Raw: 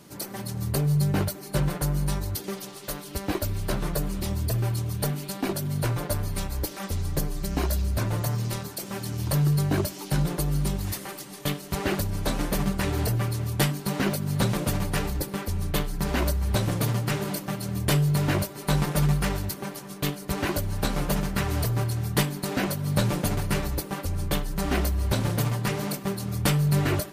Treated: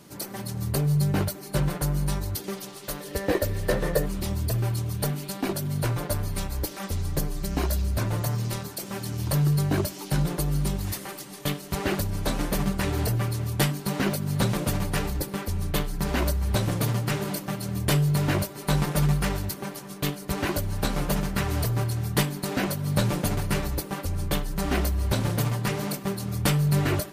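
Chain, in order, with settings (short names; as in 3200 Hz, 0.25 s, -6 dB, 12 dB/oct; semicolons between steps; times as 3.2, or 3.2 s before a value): 3–4.06 small resonant body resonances 500/1800 Hz, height 15 dB, ringing for 35 ms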